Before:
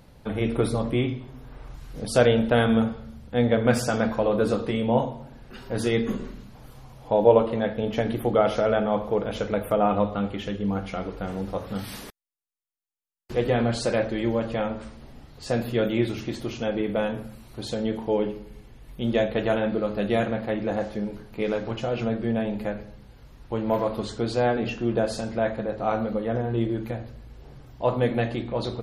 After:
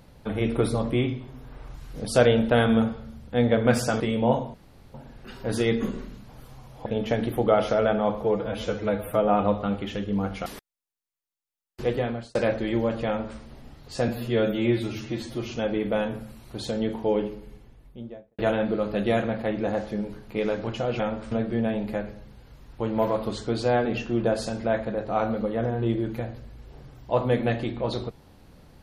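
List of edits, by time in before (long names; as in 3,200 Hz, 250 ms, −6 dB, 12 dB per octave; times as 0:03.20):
0:04.00–0:04.66: remove
0:05.20: splice in room tone 0.40 s
0:07.12–0:07.73: remove
0:09.11–0:09.81: time-stretch 1.5×
0:10.98–0:11.97: remove
0:13.33–0:13.86: fade out
0:14.58–0:14.90: duplicate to 0:22.03
0:15.59–0:16.54: time-stretch 1.5×
0:18.33–0:19.42: fade out and dull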